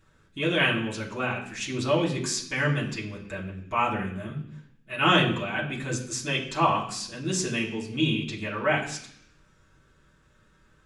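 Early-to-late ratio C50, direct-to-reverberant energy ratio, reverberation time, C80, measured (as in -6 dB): 8.0 dB, -7.0 dB, 0.65 s, 11.0 dB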